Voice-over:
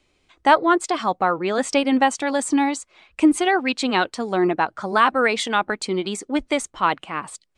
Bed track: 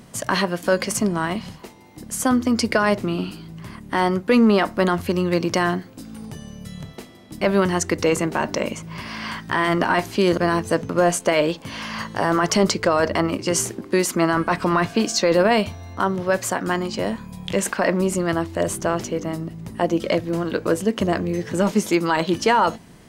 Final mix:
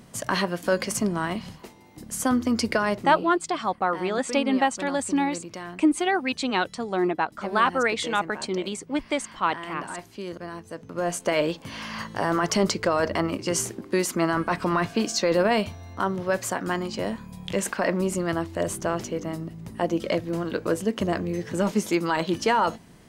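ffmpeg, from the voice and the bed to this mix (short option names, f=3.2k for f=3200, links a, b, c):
-filter_complex "[0:a]adelay=2600,volume=-4.5dB[a];[1:a]volume=8.5dB,afade=t=out:st=2.71:d=0.62:silence=0.223872,afade=t=in:st=10.8:d=0.56:silence=0.237137[b];[a][b]amix=inputs=2:normalize=0"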